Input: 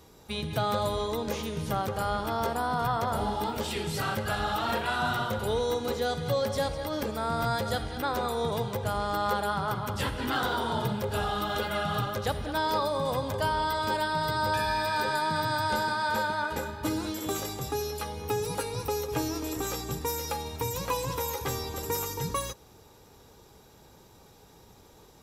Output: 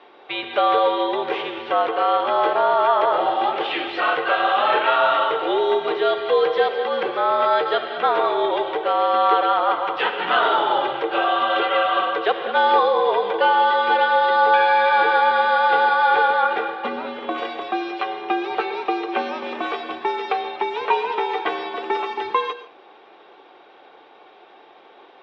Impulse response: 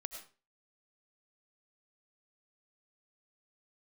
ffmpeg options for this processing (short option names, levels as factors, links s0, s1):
-filter_complex "[0:a]asettb=1/sr,asplit=3[s0][s1][s2];[s0]atrim=end=16.864[s3];[s1]atrim=start=16.86:end=17.38,asetpts=PTS-STARTPTS,afade=t=in:d=0.004:c=qsin,afade=t=out:st=0.516:d=0.004:c=qsin,highshelf=f=2400:g=-8.5[s4];[s2]atrim=start=17.376[s5];[s3][s4]acrossfade=d=0.004:c1=hsin:c2=qsin[s6];[s6][s5]acrossfade=d=0.004:c1=qsin:c2=hsin,asplit=2[s7][s8];[1:a]atrim=start_sample=2205,asetrate=38367,aresample=44100,highshelf=f=5800:g=10.5[s9];[s8][s9]afir=irnorm=-1:irlink=0,volume=0.708[s10];[s7][s10]amix=inputs=2:normalize=0,highpass=f=500:t=q:w=0.5412,highpass=f=500:t=q:w=1.307,lowpass=f=3300:t=q:w=0.5176,lowpass=f=3300:t=q:w=0.7071,lowpass=f=3300:t=q:w=1.932,afreqshift=-72,volume=2.66"